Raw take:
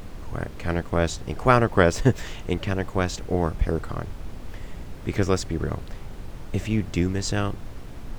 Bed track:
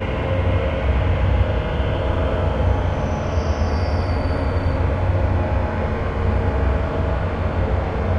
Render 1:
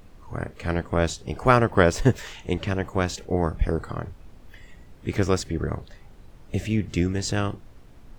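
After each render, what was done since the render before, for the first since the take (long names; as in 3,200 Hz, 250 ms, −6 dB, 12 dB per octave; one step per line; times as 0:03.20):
noise reduction from a noise print 11 dB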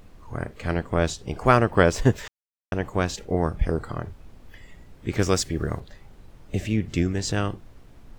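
0:02.28–0:02.72: silence
0:05.19–0:05.80: high-shelf EQ 3,800 Hz +9 dB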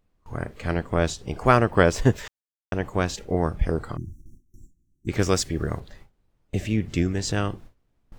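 noise gate with hold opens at −35 dBFS
0:03.97–0:05.08: time-frequency box erased 380–5,500 Hz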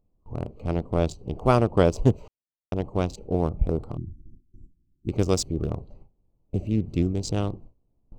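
adaptive Wiener filter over 25 samples
parametric band 1,700 Hz −15 dB 0.71 octaves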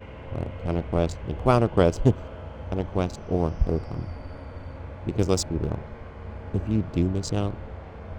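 mix in bed track −18.5 dB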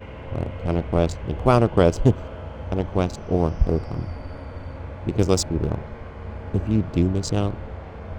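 level +3.5 dB
brickwall limiter −3 dBFS, peak gain reduction 2 dB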